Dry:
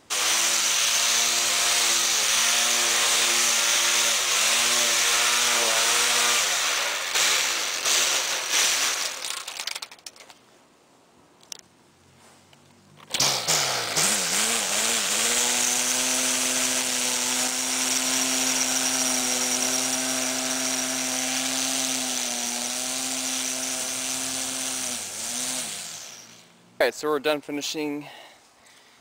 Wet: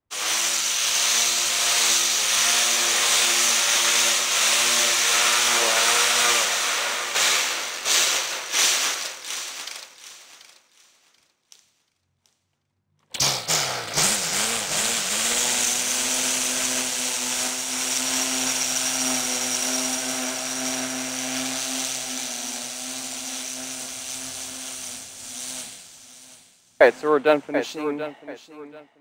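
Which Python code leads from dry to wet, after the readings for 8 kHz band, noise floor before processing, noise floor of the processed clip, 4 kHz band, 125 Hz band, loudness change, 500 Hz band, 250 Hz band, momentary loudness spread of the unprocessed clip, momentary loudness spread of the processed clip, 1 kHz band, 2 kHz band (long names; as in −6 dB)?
+0.5 dB, −56 dBFS, −67 dBFS, +0.5 dB, +2.0 dB, +1.0 dB, +4.5 dB, +0.5 dB, 10 LU, 14 LU, +1.5 dB, +1.0 dB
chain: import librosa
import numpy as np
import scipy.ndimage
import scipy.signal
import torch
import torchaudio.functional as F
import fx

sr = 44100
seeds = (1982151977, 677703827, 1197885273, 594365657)

p1 = x + fx.echo_feedback(x, sr, ms=735, feedback_pct=47, wet_db=-7.0, dry=0)
y = fx.band_widen(p1, sr, depth_pct=100)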